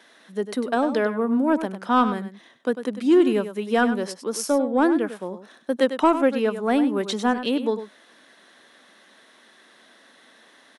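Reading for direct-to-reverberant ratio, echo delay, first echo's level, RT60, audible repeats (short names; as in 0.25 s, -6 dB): none, 99 ms, -11.0 dB, none, 1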